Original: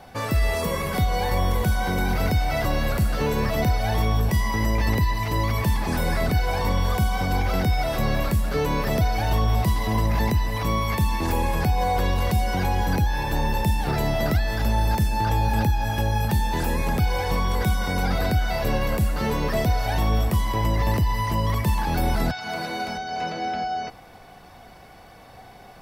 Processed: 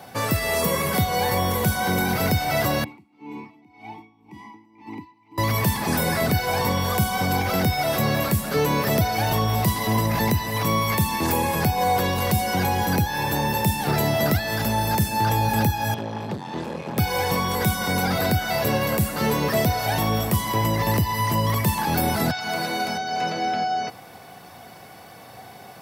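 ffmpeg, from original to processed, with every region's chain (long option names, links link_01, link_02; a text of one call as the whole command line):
ffmpeg -i in.wav -filter_complex "[0:a]asettb=1/sr,asplit=3[link_01][link_02][link_03];[link_01]atrim=end=2.844[link_04];[link_02]atrim=start=2.84:end=5.38,asetpts=PTS-STARTPTS,afade=type=in:duration=0.004:curve=qsin,afade=type=out:start_time=2.536:duration=0.004:curve=qsin,asplit=3[link_05][link_06][link_07];[link_05]bandpass=frequency=300:width_type=q:width=8,volume=0dB[link_08];[link_06]bandpass=frequency=870:width_type=q:width=8,volume=-6dB[link_09];[link_07]bandpass=frequency=2240:width_type=q:width=8,volume=-9dB[link_10];[link_08][link_09][link_10]amix=inputs=3:normalize=0,aeval=exprs='val(0)*pow(10,-21*(0.5-0.5*cos(2*PI*1.9*n/s))/20)':channel_layout=same[link_11];[link_03]atrim=start=5.376[link_12];[link_04][link_11]acrossfade=duration=0.004:curve1=hsin:curve2=qsin[link_13];[link_13][link_12]acrossfade=duration=0.004:curve1=qsin:curve2=hsin,asettb=1/sr,asplit=3[link_14][link_15][link_16];[link_14]atrim=end=15.944[link_17];[link_15]atrim=start=15.94:end=16.98,asetpts=PTS-STARTPTS,afade=type=in:duration=0.004:curve=qsin,afade=type=out:start_time=1.036:duration=0.004:curve=qsin,equalizer=frequency=1500:width_type=o:width=1.7:gain=-11,asoftclip=type=hard:threshold=-24.5dB,highpass=160,lowpass=3000[link_18];[link_16]atrim=start=16.976[link_19];[link_17][link_18]acrossfade=duration=0.004:curve1=hsin:curve2=qsin[link_20];[link_20][link_19]acrossfade=duration=0.004:curve1=qsin:curve2=hsin,highpass=frequency=95:width=0.5412,highpass=frequency=95:width=1.3066,highshelf=frequency=7600:gain=9,acontrast=66,volume=-3.5dB" out.wav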